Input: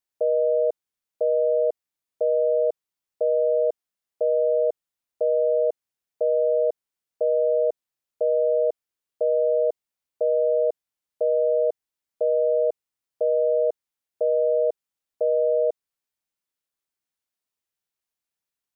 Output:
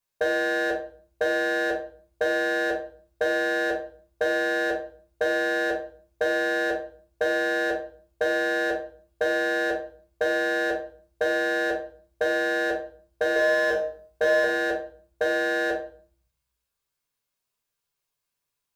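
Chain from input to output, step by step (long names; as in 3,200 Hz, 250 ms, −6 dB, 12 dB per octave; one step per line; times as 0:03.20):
wave folding −19 dBFS
0:13.34–0:14.44: flutter between parallel walls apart 3.3 metres, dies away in 0.32 s
convolution reverb RT60 0.50 s, pre-delay 4 ms, DRR −2 dB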